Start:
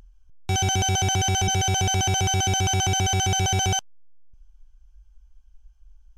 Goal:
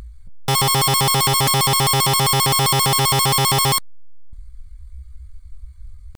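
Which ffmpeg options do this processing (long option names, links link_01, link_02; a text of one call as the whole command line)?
ffmpeg -i in.wav -af "aeval=exprs='0.211*sin(PI/2*3.16*val(0)/0.211)':channel_layout=same,asetrate=62367,aresample=44100,atempo=0.707107" out.wav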